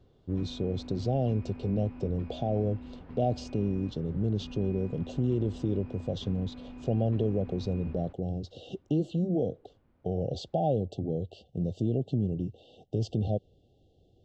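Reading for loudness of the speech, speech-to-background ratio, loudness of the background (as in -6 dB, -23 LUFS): -31.5 LUFS, 14.0 dB, -45.5 LUFS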